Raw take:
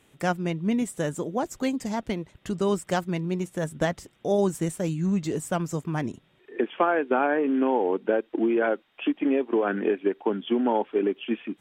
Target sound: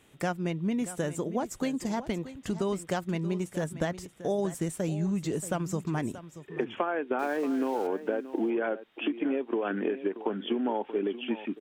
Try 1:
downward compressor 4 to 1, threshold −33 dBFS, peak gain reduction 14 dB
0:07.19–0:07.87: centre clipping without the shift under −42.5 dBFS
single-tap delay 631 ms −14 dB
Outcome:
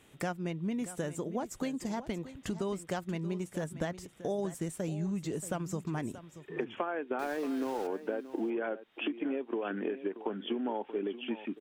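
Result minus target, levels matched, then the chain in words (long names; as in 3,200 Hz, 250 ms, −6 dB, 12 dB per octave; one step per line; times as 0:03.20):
downward compressor: peak gain reduction +5 dB
downward compressor 4 to 1, threshold −26.5 dBFS, peak gain reduction 9 dB
0:07.19–0:07.87: centre clipping without the shift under −42.5 dBFS
single-tap delay 631 ms −14 dB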